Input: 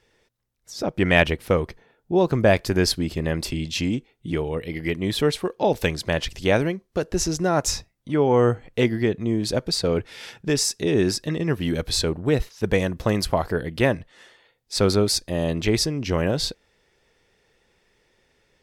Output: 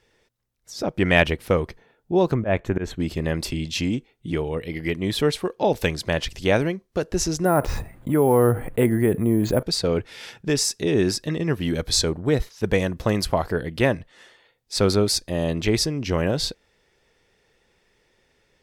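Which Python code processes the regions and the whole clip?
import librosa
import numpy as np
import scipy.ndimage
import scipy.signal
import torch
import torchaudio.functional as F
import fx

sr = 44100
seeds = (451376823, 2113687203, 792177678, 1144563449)

y = fx.chain(x, sr, fx.moving_average(points=9),
    fx.auto_swell(attack_ms=109.0), at=(2.34, 3.0))
y = fx.chain(y, sr, fx.lowpass(hz=1800.0, slope=12),
    fx.resample_bad(factor=4, down='filtered', up='hold'),
    fx.env_flatten(amount_pct=50), at=(7.45, 9.63))
y = fx.chain(y, sr, fx.notch(hz=2700.0, q=9.5),
    fx.dynamic_eq(hz=6300.0, q=1.5, threshold_db=-38.0, ratio=4.0, max_db=6), at=(11.8, 12.51))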